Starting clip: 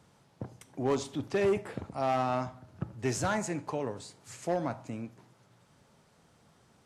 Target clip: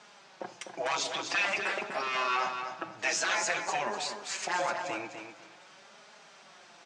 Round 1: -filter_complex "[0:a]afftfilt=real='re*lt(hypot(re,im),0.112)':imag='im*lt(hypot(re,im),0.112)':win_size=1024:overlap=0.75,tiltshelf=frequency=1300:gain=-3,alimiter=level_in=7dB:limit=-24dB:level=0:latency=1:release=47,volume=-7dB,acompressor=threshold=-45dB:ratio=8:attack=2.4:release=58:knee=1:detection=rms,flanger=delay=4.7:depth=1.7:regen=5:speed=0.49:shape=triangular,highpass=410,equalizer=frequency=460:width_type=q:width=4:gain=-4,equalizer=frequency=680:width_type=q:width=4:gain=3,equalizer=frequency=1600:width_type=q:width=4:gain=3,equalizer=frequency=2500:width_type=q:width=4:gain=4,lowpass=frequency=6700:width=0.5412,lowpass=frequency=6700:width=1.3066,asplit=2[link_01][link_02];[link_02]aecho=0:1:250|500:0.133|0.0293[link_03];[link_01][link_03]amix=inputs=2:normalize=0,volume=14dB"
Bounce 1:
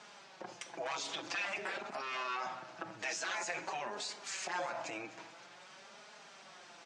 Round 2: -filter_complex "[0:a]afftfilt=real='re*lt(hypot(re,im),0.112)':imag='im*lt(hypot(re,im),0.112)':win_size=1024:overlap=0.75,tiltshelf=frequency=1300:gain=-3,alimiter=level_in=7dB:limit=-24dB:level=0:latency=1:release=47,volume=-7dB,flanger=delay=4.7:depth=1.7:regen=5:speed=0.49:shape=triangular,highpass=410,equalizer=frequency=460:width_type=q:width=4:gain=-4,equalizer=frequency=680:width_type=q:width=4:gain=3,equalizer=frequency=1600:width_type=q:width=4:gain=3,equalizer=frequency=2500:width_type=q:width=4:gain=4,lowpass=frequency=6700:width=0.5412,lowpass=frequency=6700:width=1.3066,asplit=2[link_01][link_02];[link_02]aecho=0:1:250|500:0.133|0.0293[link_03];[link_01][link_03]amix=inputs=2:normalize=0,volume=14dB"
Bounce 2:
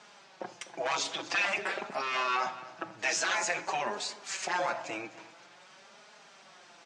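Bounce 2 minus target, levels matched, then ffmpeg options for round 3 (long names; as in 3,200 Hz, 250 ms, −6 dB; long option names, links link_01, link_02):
echo-to-direct −10 dB
-filter_complex "[0:a]afftfilt=real='re*lt(hypot(re,im),0.112)':imag='im*lt(hypot(re,im),0.112)':win_size=1024:overlap=0.75,tiltshelf=frequency=1300:gain=-3,alimiter=level_in=7dB:limit=-24dB:level=0:latency=1:release=47,volume=-7dB,flanger=delay=4.7:depth=1.7:regen=5:speed=0.49:shape=triangular,highpass=410,equalizer=frequency=460:width_type=q:width=4:gain=-4,equalizer=frequency=680:width_type=q:width=4:gain=3,equalizer=frequency=1600:width_type=q:width=4:gain=3,equalizer=frequency=2500:width_type=q:width=4:gain=4,lowpass=frequency=6700:width=0.5412,lowpass=frequency=6700:width=1.3066,asplit=2[link_01][link_02];[link_02]aecho=0:1:250|500|750:0.422|0.0928|0.0204[link_03];[link_01][link_03]amix=inputs=2:normalize=0,volume=14dB"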